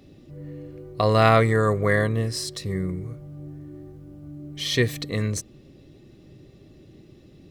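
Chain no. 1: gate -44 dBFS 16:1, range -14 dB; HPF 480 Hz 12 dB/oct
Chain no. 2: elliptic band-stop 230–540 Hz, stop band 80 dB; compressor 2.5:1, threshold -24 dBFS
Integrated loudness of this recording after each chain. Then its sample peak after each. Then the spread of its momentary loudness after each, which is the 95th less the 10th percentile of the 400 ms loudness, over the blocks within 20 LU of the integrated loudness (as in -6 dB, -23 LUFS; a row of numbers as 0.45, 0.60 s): -25.5, -28.5 LUFS; -3.0, -11.5 dBFS; 17, 20 LU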